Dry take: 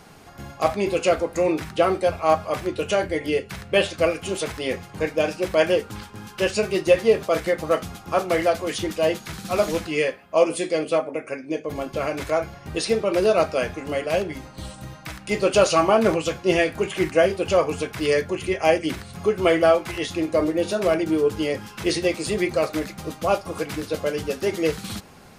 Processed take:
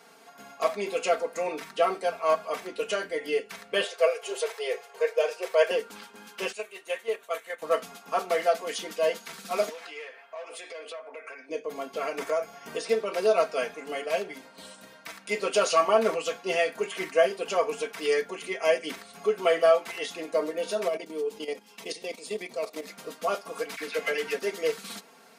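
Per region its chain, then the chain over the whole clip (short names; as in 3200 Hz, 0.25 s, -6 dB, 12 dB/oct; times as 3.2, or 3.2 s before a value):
3.84–5.71 Chebyshev band-stop 170–440 Hz + resonant low shelf 240 Hz -11 dB, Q 3
6.52–7.62 HPF 1200 Hz 6 dB/oct + bell 5000 Hz -15 dB 0.36 oct + gate -29 dBFS, range -7 dB
9.69–11.49 overdrive pedal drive 17 dB, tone 1400 Hz, clips at -5 dBFS + HPF 1000 Hz 6 dB/oct + compressor, threshold -33 dBFS
12.18–12.89 dynamic EQ 2400 Hz, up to -4 dB, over -41 dBFS, Q 1.2 + notch 4000 Hz, Q 8.3 + three-band squash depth 70%
20.88–22.88 bell 1500 Hz -10.5 dB 0.52 oct + level quantiser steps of 12 dB
23.76–24.39 bell 2100 Hz +12 dB 0.95 oct + dispersion lows, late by 46 ms, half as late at 1200 Hz
whole clip: HPF 370 Hz 12 dB/oct; comb 4.4 ms, depth 80%; gain -6.5 dB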